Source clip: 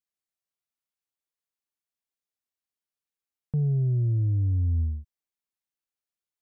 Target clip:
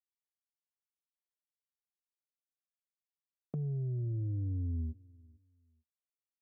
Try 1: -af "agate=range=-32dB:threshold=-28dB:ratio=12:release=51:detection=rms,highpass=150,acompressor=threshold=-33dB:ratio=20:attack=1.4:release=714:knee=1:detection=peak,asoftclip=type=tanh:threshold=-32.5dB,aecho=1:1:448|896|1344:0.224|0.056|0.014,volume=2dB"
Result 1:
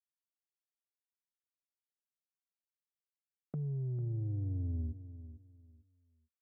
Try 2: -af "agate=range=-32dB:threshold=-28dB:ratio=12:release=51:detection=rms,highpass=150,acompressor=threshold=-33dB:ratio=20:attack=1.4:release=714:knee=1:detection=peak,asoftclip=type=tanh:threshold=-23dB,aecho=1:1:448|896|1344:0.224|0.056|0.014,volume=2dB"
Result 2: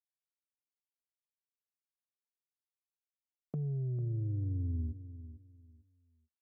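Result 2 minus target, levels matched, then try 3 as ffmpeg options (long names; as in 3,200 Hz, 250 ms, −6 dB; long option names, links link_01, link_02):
echo-to-direct +11.5 dB
-af "agate=range=-32dB:threshold=-28dB:ratio=12:release=51:detection=rms,highpass=150,acompressor=threshold=-33dB:ratio=20:attack=1.4:release=714:knee=1:detection=peak,asoftclip=type=tanh:threshold=-23dB,aecho=1:1:448|896:0.0596|0.0149,volume=2dB"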